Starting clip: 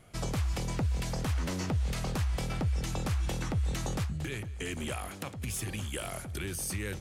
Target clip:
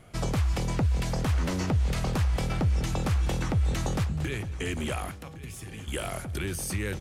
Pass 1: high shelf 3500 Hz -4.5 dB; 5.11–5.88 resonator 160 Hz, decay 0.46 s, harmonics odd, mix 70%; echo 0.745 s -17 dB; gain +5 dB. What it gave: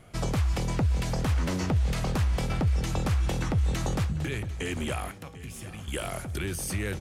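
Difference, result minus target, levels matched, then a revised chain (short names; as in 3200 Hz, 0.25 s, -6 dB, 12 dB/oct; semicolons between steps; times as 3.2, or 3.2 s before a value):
echo 0.366 s early
high shelf 3500 Hz -4.5 dB; 5.11–5.88 resonator 160 Hz, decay 0.46 s, harmonics odd, mix 70%; echo 1.111 s -17 dB; gain +5 dB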